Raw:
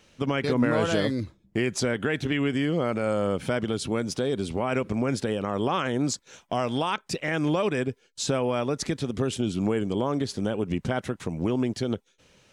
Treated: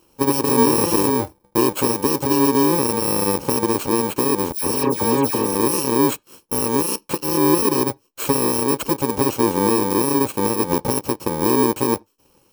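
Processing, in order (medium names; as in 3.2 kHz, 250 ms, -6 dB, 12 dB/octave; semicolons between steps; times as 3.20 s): bit-reversed sample order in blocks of 64 samples; 4.52–5.55 s: phase dispersion lows, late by 112 ms, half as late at 2.3 kHz; on a send at -22.5 dB: bass shelf 210 Hz +10 dB + reverberation, pre-delay 3 ms; on the sum: waveshaping leveller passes 1; high-order bell 550 Hz +11.5 dB 2.3 oct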